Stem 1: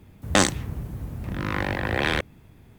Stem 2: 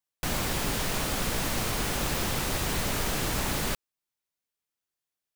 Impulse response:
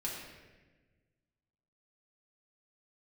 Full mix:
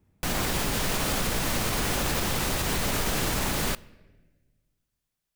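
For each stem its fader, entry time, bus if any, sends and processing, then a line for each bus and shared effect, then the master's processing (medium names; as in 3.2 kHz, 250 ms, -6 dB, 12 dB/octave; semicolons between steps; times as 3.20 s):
-16.0 dB, 0.00 s, no send, low-pass 2.5 kHz
+3.0 dB, 0.00 s, send -20.5 dB, peak limiter -20.5 dBFS, peak gain reduction 4.5 dB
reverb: on, RT60 1.3 s, pre-delay 4 ms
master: none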